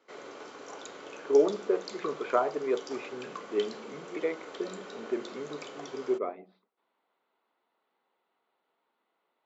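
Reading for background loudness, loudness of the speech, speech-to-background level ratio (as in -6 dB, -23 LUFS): -44.0 LUFS, -31.5 LUFS, 12.5 dB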